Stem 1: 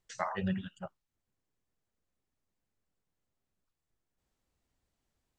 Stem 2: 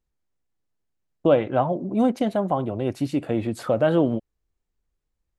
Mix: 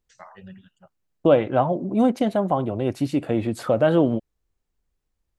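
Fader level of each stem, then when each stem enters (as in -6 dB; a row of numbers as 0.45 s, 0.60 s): -10.0 dB, +1.5 dB; 0.00 s, 0.00 s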